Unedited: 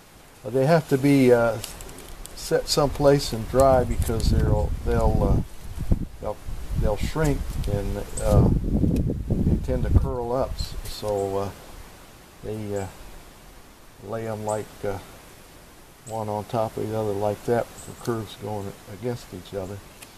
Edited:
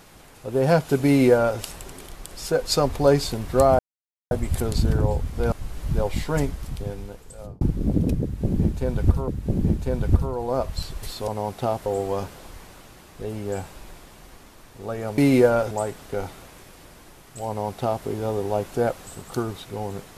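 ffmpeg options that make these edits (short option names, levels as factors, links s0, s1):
-filter_complex "[0:a]asplit=9[s0][s1][s2][s3][s4][s5][s6][s7][s8];[s0]atrim=end=3.79,asetpts=PTS-STARTPTS,afade=t=out:st=3.786:d=0.004:c=hsin,apad=pad_dur=0.52[s9];[s1]atrim=start=3.79:end=5.002,asetpts=PTS-STARTPTS,afade=t=in:d=0.004:c=hsin[s10];[s2]atrim=start=6.388:end=8.48,asetpts=PTS-STARTPTS,afade=t=out:st=0.722:d=1.37[s11];[s3]atrim=start=8.48:end=10.152,asetpts=PTS-STARTPTS,afade=t=in:d=0.004:c=hsin[s12];[s4]atrim=start=9.098:end=11.102[s13];[s5]atrim=start=16.188:end=16.772[s14];[s6]atrim=start=11.098:end=14.422[s15];[s7]atrim=start=1.058:end=1.592[s16];[s8]atrim=start=14.418[s17];[s9][s10]concat=n=2:v=0:a=1[s18];[s11][s12]concat=n=2:v=0:a=1[s19];[s18][s19]acrossfade=d=0.004:c1=hsin:c2=hsin[s20];[s20][s13]acrossfade=d=0.004:c1=hsin:c2=hsin[s21];[s21][s14]acrossfade=d=0.004:c1=hsin:c2=hsin[s22];[s22][s15]acrossfade=d=0.004:c1=hsin:c2=hsin[s23];[s23][s16]acrossfade=d=0.004:c1=hsin:c2=hsin[s24];[s24][s17]acrossfade=d=0.004:c1=hsin:c2=hsin"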